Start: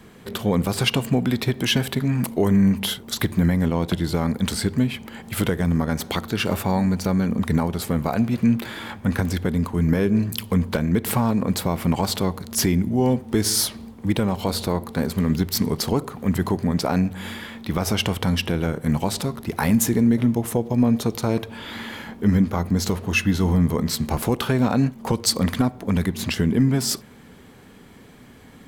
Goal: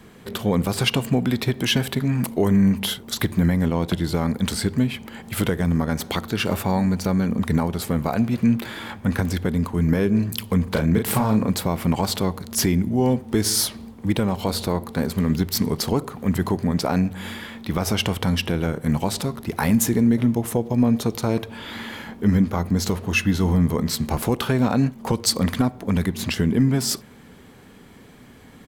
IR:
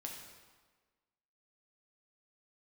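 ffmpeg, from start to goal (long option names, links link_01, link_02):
-filter_complex "[0:a]asplit=3[link_01][link_02][link_03];[link_01]afade=type=out:start_time=10.66:duration=0.02[link_04];[link_02]asplit=2[link_05][link_06];[link_06]adelay=37,volume=-4.5dB[link_07];[link_05][link_07]amix=inputs=2:normalize=0,afade=type=in:start_time=10.66:duration=0.02,afade=type=out:start_time=11.49:duration=0.02[link_08];[link_03]afade=type=in:start_time=11.49:duration=0.02[link_09];[link_04][link_08][link_09]amix=inputs=3:normalize=0"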